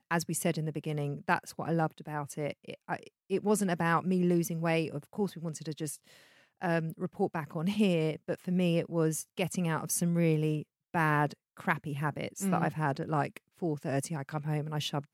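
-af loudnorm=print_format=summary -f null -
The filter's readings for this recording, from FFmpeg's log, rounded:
Input Integrated:    -32.4 LUFS
Input True Peak:     -11.7 dBTP
Input LRA:             2.6 LU
Input Threshold:     -42.5 LUFS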